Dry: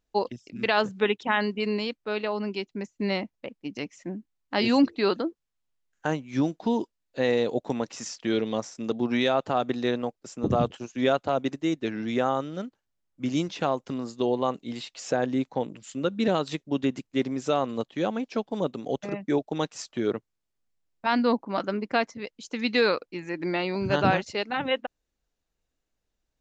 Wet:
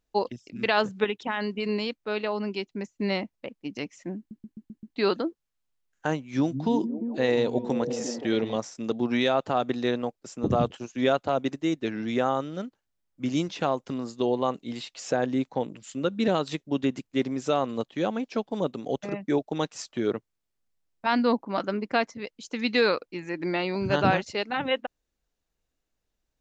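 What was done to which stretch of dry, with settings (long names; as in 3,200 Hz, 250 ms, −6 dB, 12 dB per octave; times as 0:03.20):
0:01.04–0:01.69: downward compressor 3 to 1, threshold −25 dBFS
0:04.18: stutter in place 0.13 s, 6 plays
0:06.19–0:08.56: echo through a band-pass that steps 174 ms, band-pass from 160 Hz, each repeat 0.7 octaves, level −2 dB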